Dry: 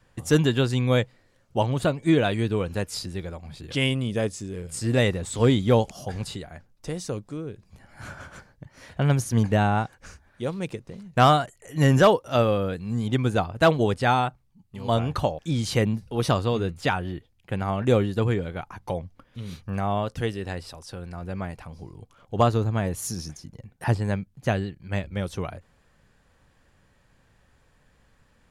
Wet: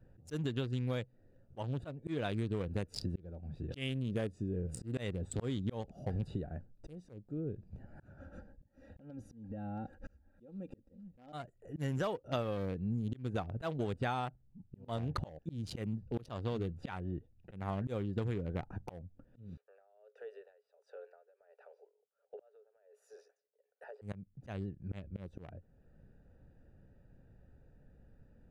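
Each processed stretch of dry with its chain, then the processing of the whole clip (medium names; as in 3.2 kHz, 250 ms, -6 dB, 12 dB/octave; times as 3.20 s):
8.18–11.33 s: comb 3.7 ms, depth 76% + compression 16:1, threshold -31 dBFS
19.57–24.02 s: rippled Chebyshev high-pass 410 Hz, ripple 6 dB + compression 5:1, threshold -39 dBFS + logarithmic tremolo 1.4 Hz, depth 21 dB
whole clip: local Wiener filter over 41 samples; slow attack 579 ms; compression 12:1, threshold -34 dBFS; trim +2 dB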